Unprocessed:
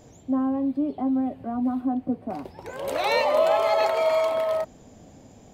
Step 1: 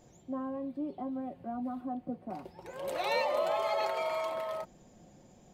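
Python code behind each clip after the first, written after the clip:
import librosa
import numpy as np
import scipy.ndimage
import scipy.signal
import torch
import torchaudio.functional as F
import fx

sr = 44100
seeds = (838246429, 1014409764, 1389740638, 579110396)

y = x + 0.46 * np.pad(x, (int(5.6 * sr / 1000.0), 0))[:len(x)]
y = F.gain(torch.from_numpy(y), -9.0).numpy()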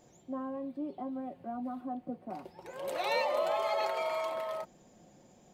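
y = fx.low_shelf(x, sr, hz=120.0, db=-9.5)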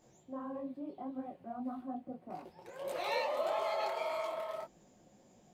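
y = fx.detune_double(x, sr, cents=58)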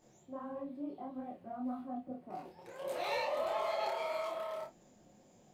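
y = 10.0 ** (-26.5 / 20.0) * np.tanh(x / 10.0 ** (-26.5 / 20.0))
y = fx.room_early_taps(y, sr, ms=(28, 52), db=(-3.5, -12.5))
y = F.gain(torch.from_numpy(y), -1.5).numpy()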